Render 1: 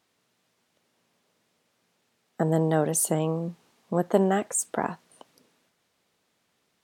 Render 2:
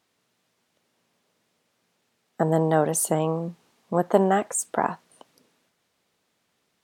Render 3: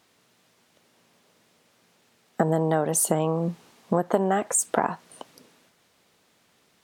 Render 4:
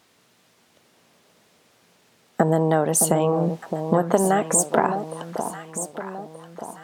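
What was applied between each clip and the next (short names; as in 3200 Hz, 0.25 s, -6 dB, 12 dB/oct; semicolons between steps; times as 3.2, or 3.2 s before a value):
dynamic EQ 960 Hz, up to +6 dB, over -38 dBFS, Q 0.82
compressor 5:1, threshold -28 dBFS, peak gain reduction 14.5 dB; gain +8.5 dB
echo with dull and thin repeats by turns 0.614 s, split 1000 Hz, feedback 64%, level -7 dB; gain +3.5 dB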